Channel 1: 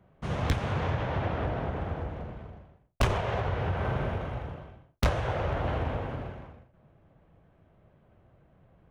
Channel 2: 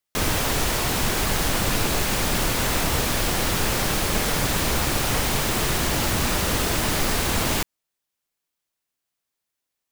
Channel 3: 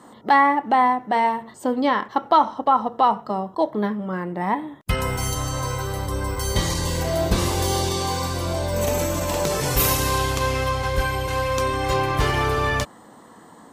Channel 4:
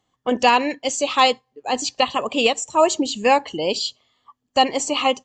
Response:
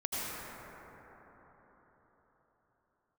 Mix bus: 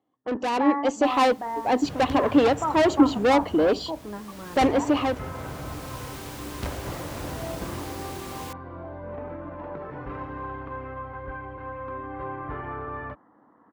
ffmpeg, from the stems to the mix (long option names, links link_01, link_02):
-filter_complex "[0:a]adelay=1600,volume=-7.5dB[link_01];[1:a]adelay=900,volume=-17dB[link_02];[2:a]lowpass=frequency=1500:width=0.5412,lowpass=frequency=1500:width=1.3066,tiltshelf=frequency=1100:gain=-5,adelay=300,volume=-10.5dB[link_03];[3:a]bandpass=frequency=450:width_type=q:width=0.74:csg=0,aeval=exprs='(tanh(15.8*val(0)+0.25)-tanh(0.25))/15.8':channel_layout=same,dynaudnorm=framelen=440:gausssize=3:maxgain=9dB,volume=-2dB,asplit=2[link_04][link_05];[link_05]apad=whole_len=476997[link_06];[link_02][link_06]sidechaincompress=threshold=-33dB:ratio=8:attack=16:release=1080[link_07];[link_01][link_07][link_03][link_04]amix=inputs=4:normalize=0,highpass=42,equalizer=frequency=290:width=4.4:gain=8.5"